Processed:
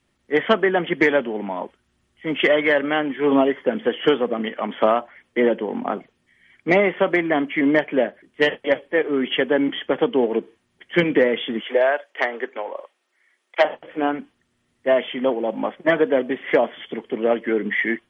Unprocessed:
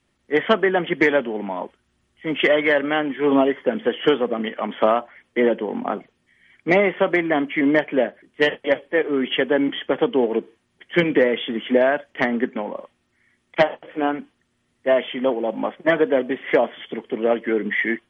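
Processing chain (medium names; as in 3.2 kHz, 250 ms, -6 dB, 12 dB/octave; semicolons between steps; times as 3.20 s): 11.61–13.65 s: high-pass 410 Hz 24 dB/octave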